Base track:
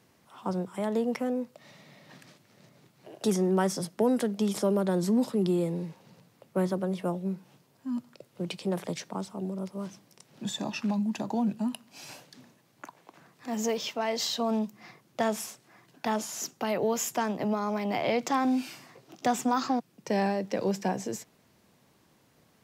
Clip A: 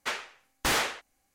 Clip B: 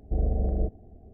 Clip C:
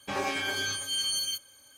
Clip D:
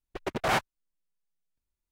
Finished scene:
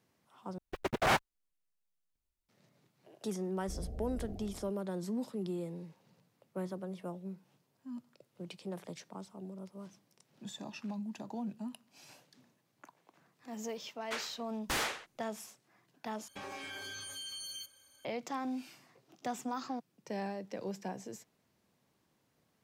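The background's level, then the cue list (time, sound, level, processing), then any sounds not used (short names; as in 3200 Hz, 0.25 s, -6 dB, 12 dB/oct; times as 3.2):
base track -11.5 dB
0.58 replace with D -2 dB + block floating point 7-bit
3.57 add B -17 dB + sustainer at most 32 dB/s
14.05 add A -7.5 dB
16.28 replace with C -7.5 dB + compressor, threshold -33 dBFS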